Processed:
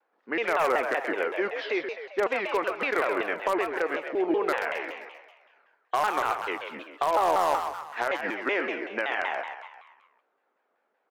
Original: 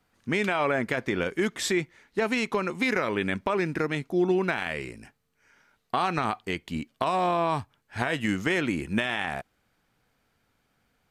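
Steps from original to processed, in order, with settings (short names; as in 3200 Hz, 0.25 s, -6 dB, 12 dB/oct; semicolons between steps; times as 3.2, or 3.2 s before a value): nonlinear frequency compression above 2800 Hz 1.5:1; treble ducked by the level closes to 1700 Hz, closed at -26.5 dBFS; HPF 390 Hz 24 dB/oct; high shelf 4000 Hz +8.5 dB; in parallel at -12 dB: wrapped overs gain 18 dB; on the sum: low-pass opened by the level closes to 1100 Hz, open at -23.5 dBFS; on a send: frequency-shifting echo 0.132 s, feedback 51%, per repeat +58 Hz, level -7 dB; on the sum: shaped vibrato saw down 5.3 Hz, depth 250 cents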